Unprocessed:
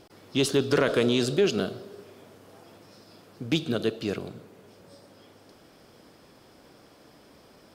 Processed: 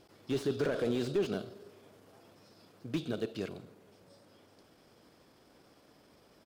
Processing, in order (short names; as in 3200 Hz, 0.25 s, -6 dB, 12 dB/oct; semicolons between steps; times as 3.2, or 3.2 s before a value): tempo 1.2×; slew limiter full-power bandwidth 66 Hz; gain -7.5 dB